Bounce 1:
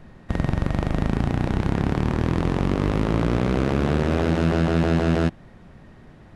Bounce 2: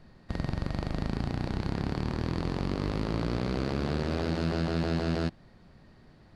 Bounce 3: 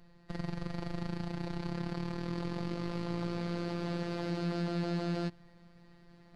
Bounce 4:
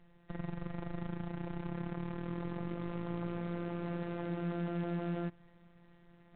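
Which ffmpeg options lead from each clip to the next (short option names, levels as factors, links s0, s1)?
-af "equalizer=f=4500:t=o:w=0.35:g=13,volume=0.355"
-af "areverse,acompressor=mode=upward:threshold=0.00501:ratio=2.5,areverse,afftfilt=real='hypot(re,im)*cos(PI*b)':imag='0':win_size=1024:overlap=0.75,volume=0.794"
-filter_complex "[0:a]acrossover=split=2700[s0][s1];[s1]acompressor=threshold=0.00112:ratio=4:attack=1:release=60[s2];[s0][s2]amix=inputs=2:normalize=0,volume=0.75" -ar 8000 -c:a adpcm_g726 -b:a 32k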